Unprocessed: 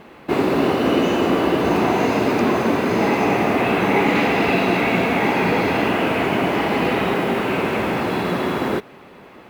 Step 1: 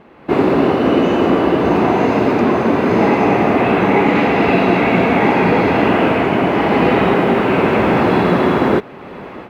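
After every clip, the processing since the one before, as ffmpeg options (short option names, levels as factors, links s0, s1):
-af "lowpass=f=1900:p=1,dynaudnorm=f=160:g=3:m=5.01,volume=0.891"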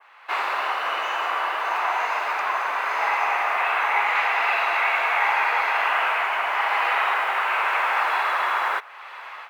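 -af "adynamicequalizer=threshold=0.0141:dfrequency=4100:dqfactor=0.83:tfrequency=4100:tqfactor=0.83:attack=5:release=100:ratio=0.375:range=3:mode=cutabove:tftype=bell,highpass=f=980:w=0.5412,highpass=f=980:w=1.3066,volume=1.12"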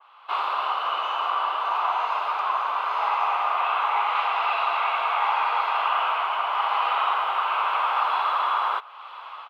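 -af "firequalizer=gain_entry='entry(300,0);entry(1200,10);entry(1800,-9);entry(3100,9);entry(6300,-7);entry(13000,-5)':delay=0.05:min_phase=1,volume=0.447"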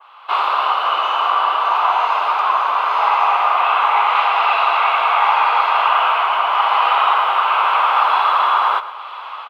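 -af "aecho=1:1:119|238|357|476|595:0.178|0.0889|0.0445|0.0222|0.0111,volume=2.66"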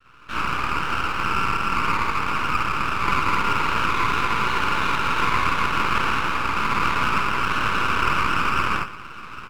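-filter_complex "[0:a]highpass=f=590:t=q:w=0.5412,highpass=f=590:t=q:w=1.307,lowpass=f=2300:t=q:w=0.5176,lowpass=f=2300:t=q:w=0.7071,lowpass=f=2300:t=q:w=1.932,afreqshift=190,acrossover=split=1500[s0][s1];[s0]adelay=50[s2];[s2][s1]amix=inputs=2:normalize=0,aeval=exprs='max(val(0),0)':c=same"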